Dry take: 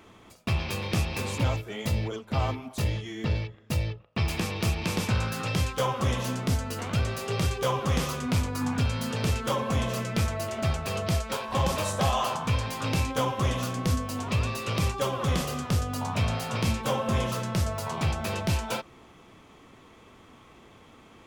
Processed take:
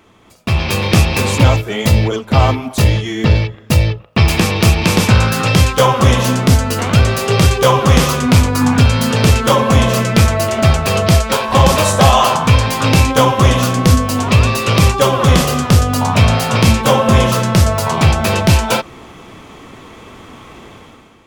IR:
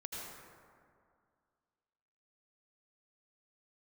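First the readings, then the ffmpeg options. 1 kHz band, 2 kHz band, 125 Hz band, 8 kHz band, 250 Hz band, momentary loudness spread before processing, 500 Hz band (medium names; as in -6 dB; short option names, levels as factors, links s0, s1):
+16.0 dB, +16.0 dB, +16.0 dB, +16.0 dB, +16.0 dB, 4 LU, +16.0 dB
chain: -af "dynaudnorm=f=150:g=7:m=4.47,volume=1.5"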